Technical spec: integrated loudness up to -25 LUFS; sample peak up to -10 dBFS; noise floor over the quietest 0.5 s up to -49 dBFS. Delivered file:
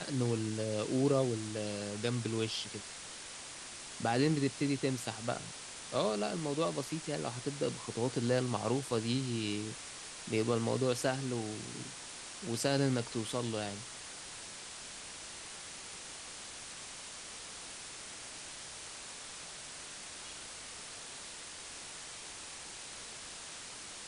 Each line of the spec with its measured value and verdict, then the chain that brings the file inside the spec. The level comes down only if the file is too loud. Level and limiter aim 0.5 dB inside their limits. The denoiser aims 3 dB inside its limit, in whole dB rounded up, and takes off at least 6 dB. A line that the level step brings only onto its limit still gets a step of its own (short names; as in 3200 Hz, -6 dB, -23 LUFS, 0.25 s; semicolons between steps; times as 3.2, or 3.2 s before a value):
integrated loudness -37.0 LUFS: OK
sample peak -16.5 dBFS: OK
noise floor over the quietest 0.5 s -47 dBFS: fail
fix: denoiser 6 dB, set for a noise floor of -47 dBFS